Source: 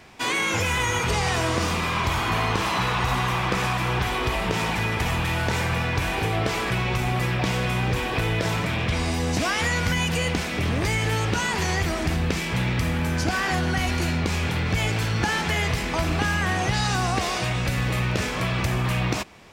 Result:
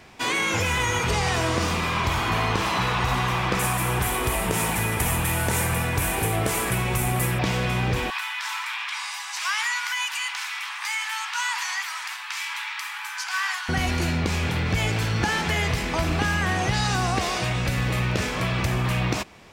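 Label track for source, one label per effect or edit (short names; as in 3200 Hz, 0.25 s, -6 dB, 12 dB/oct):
3.590000	7.390000	resonant high shelf 7000 Hz +14 dB, Q 1.5
8.100000	13.690000	steep high-pass 870 Hz 72 dB/oct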